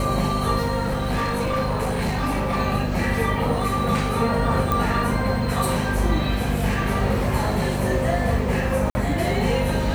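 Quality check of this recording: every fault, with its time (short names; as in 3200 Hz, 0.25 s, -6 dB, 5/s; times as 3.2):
hum 50 Hz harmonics 5 -26 dBFS
0.84–2.6 clipped -19 dBFS
4.72 pop
8.9–8.95 gap 50 ms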